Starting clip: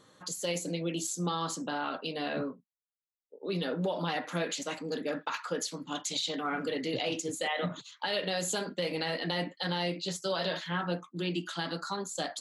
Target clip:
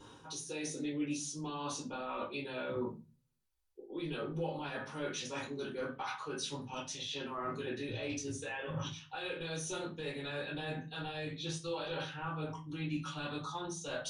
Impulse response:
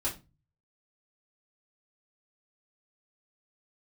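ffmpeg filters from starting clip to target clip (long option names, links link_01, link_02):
-filter_complex "[0:a]asubboost=boost=10:cutoff=75,areverse,acompressor=threshold=-43dB:ratio=12,areverse,asetrate=38808,aresample=44100[link_01];[1:a]atrim=start_sample=2205[link_02];[link_01][link_02]afir=irnorm=-1:irlink=0,volume=1.5dB"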